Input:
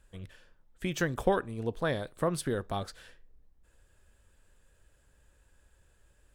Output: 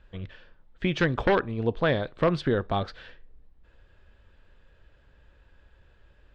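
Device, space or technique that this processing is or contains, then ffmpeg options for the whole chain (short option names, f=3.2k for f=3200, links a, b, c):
synthesiser wavefolder: -af "aeval=exprs='0.0944*(abs(mod(val(0)/0.0944+3,4)-2)-1)':c=same,lowpass=f=4.1k:w=0.5412,lowpass=f=4.1k:w=1.3066,volume=7dB"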